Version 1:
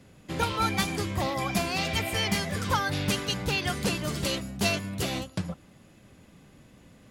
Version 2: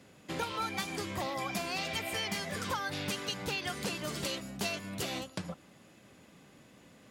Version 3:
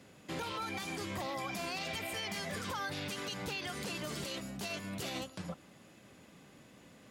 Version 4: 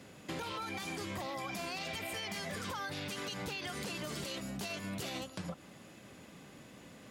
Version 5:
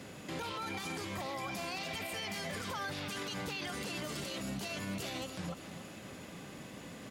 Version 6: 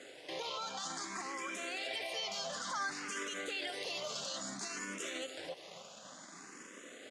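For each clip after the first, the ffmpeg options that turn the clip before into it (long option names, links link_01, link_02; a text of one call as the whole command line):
ffmpeg -i in.wav -af "highpass=frequency=270:poles=1,equalizer=frequency=11000:width=6.6:gain=-3.5,acompressor=threshold=-34dB:ratio=3" out.wav
ffmpeg -i in.wav -af "alimiter=level_in=6dB:limit=-24dB:level=0:latency=1:release=43,volume=-6dB" out.wav
ffmpeg -i in.wav -af "acompressor=threshold=-41dB:ratio=6,volume=4dB" out.wav
ffmpeg -i in.wav -af "alimiter=level_in=13dB:limit=-24dB:level=0:latency=1:release=53,volume=-13dB,aecho=1:1:283|566|849|1132|1415|1698:0.251|0.136|0.0732|0.0396|0.0214|0.0115,volume=5.5dB" out.wav
ffmpeg -i in.wav -filter_complex "[0:a]aeval=exprs='sgn(val(0))*max(abs(val(0))-0.00168,0)':channel_layout=same,highpass=410,equalizer=frequency=870:width_type=q:width=4:gain=-5,equalizer=frequency=2500:width_type=q:width=4:gain=-4,equalizer=frequency=6700:width_type=q:width=4:gain=5,lowpass=frequency=8700:width=0.5412,lowpass=frequency=8700:width=1.3066,asplit=2[link_01][link_02];[link_02]afreqshift=0.57[link_03];[link_01][link_03]amix=inputs=2:normalize=1,volume=5.5dB" out.wav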